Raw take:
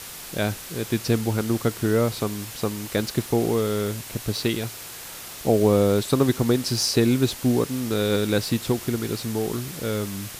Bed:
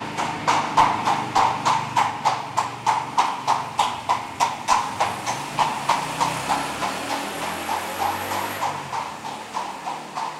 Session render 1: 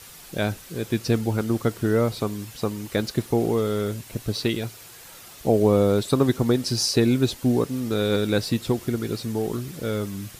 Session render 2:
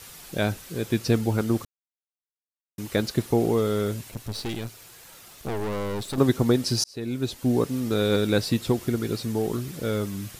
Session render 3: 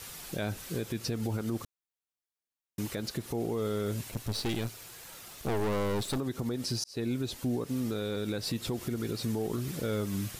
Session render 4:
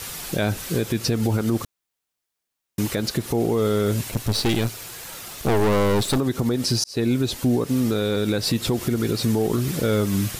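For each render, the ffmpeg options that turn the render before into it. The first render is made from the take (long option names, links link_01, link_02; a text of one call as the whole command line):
ffmpeg -i in.wav -af "afftdn=noise_reduction=8:noise_floor=-38" out.wav
ffmpeg -i in.wav -filter_complex "[0:a]asettb=1/sr,asplit=3[link_01][link_02][link_03];[link_01]atrim=end=4.104[link_04];[link_02]atrim=start=4.1:end=6.18,asetpts=PTS-STARTPTS,afade=type=in:duration=0.004:curve=qsin,afade=type=out:start_time=2.076:duration=0.004:curve=qsin,aeval=exprs='(tanh(22.4*val(0)+0.65)-tanh(0.65))/22.4':channel_layout=same[link_05];[link_03]atrim=start=6.176[link_06];[link_04][link_05]acrossfade=duration=0.004:curve1=hsin:curve2=qsin[link_07];[link_07][link_06]acrossfade=duration=0.004:curve1=qsin:curve2=hsin,asplit=4[link_08][link_09][link_10][link_11];[link_08]atrim=end=1.65,asetpts=PTS-STARTPTS,afade=type=out:start_time=1.646:duration=0.004:curve=hsin[link_12];[link_09]atrim=start=1.65:end=2.78,asetpts=PTS-STARTPTS,volume=0[link_13];[link_10]atrim=start=2.78:end=6.84,asetpts=PTS-STARTPTS,afade=type=in:duration=0.004:curve=hsin,afade=type=out:start_time=4.056:duration=0.004:curve=hsin[link_14];[link_11]atrim=start=6.84,asetpts=PTS-STARTPTS,afade=type=in:duration=0.82[link_15];[link_12][link_13][link_14][link_15]concat=n=4:v=0:a=1" out.wav
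ffmpeg -i in.wav -af "acompressor=threshold=-24dB:ratio=2,alimiter=limit=-24dB:level=0:latency=1:release=109" out.wav
ffmpeg -i in.wav -af "volume=11dB" out.wav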